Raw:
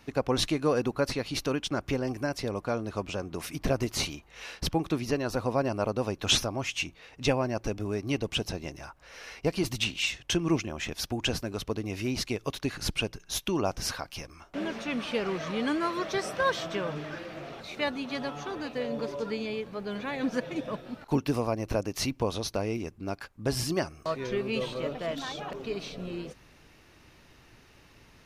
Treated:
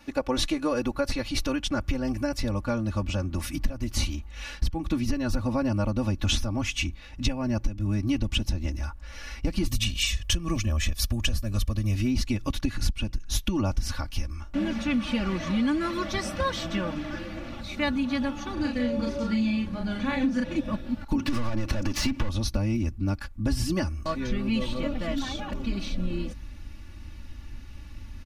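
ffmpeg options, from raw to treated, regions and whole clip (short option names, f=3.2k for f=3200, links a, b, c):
-filter_complex "[0:a]asettb=1/sr,asplit=3[a][b][c];[a]atrim=end=9.694[d];[b]atrim=start=9.69:end=11.95,asetpts=PTS-STARTPTS,afade=t=in:d=0.004:c=qsin,afade=t=out:st=2.256:d=0.004:c=qsin,highshelf=f=7.4k:g=11.5,aecho=1:1:1.7:0.51,atrim=end_sample=99666[e];[c]atrim=start=11.946[f];[d][e]acrossfade=d=0.004:c1=hsin:c2=qsin[g];[g][f]acrossfade=d=0.004:c1=qsin:c2=hsin,asettb=1/sr,asplit=3[h][i][j];[h]atrim=end=18.534[k];[i]atrim=start=18.53:end=20.56,asetpts=PTS-STARTPTS,afade=t=in:d=0.004:c=qsin,afade=t=out:st=2.026:d=0.004:c=qsin,lowpass=f=12k:w=0.5412,lowpass=f=12k:w=1.3066,asplit=2[l][m];[m]adelay=37,volume=-3dB[n];[l][n]amix=inputs=2:normalize=0,atrim=end_sample=89523[o];[j]atrim=start=20.556[p];[k][o]acrossfade=d=0.004:c1=hsin:c2=qsin[q];[q][p]acrossfade=d=0.004:c1=qsin:c2=hsin,asettb=1/sr,asplit=3[r][s][t];[r]atrim=end=21.194[u];[s]atrim=start=21.19:end=22.29,asetpts=PTS-STARTPTS,afade=t=in:d=0.004:c=qsin,afade=t=out:st=1.096:d=0.004:c=qsin,asplit=2[v][w];[w]highpass=f=720:p=1,volume=29dB,asoftclip=type=tanh:threshold=-15.5dB[x];[v][x]amix=inputs=2:normalize=0,lowpass=f=4.1k:p=1,volume=-6dB,highshelf=f=7.4k:g=-7,acompressor=threshold=-27dB:ratio=6:attack=3.2:release=140:knee=1:detection=peak[y];[t]atrim=start=22.286[z];[u][y]acrossfade=d=0.004:c1=hsin:c2=qsin[aa];[aa][z]acrossfade=d=0.004:c1=qsin:c2=hsin,aecho=1:1:3.5:0.98,asubboost=boost=9:cutoff=150,acompressor=threshold=-21dB:ratio=16"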